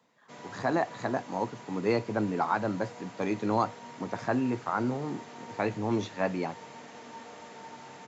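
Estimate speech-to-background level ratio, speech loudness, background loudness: 15.0 dB, -31.5 LUFS, -46.5 LUFS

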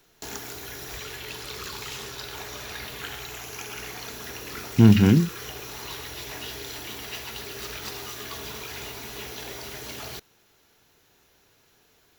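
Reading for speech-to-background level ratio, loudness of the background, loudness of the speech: 18.0 dB, -35.5 LUFS, -17.5 LUFS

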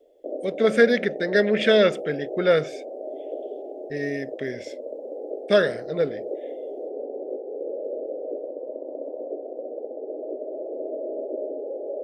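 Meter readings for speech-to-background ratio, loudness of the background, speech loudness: 11.0 dB, -33.5 LUFS, -22.5 LUFS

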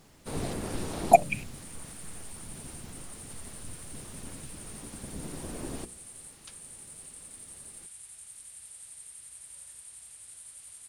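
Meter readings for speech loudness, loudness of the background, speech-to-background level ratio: -29.5 LUFS, -45.0 LUFS, 15.5 dB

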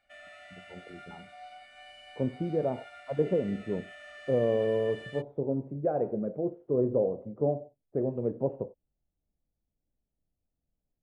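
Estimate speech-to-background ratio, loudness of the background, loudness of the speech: 17.0 dB, -48.0 LUFS, -31.0 LUFS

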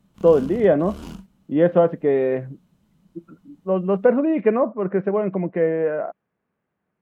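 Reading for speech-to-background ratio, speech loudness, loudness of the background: 17.0 dB, -20.5 LUFS, -37.5 LUFS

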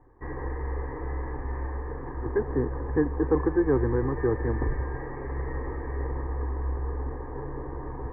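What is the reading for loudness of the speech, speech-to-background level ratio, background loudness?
-27.5 LUFS, 6.5 dB, -34.0 LUFS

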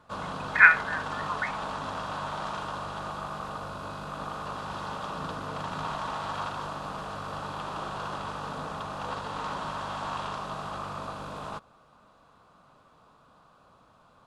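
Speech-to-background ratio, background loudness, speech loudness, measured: 16.5 dB, -35.5 LUFS, -19.0 LUFS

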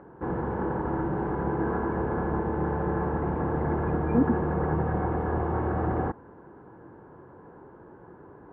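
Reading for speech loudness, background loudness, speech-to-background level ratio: -28.5 LUFS, -28.5 LUFS, 0.0 dB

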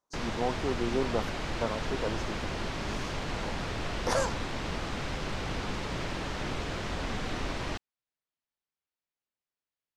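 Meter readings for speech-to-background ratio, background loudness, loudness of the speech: 1.0 dB, -35.0 LUFS, -34.0 LUFS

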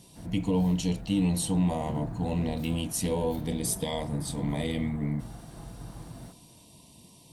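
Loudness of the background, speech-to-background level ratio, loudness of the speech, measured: -42.5 LUFS, 13.0 dB, -29.5 LUFS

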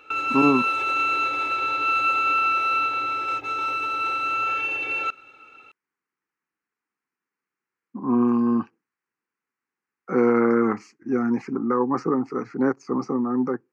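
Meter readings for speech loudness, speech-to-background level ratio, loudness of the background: -23.5 LUFS, -1.0 dB, -22.5 LUFS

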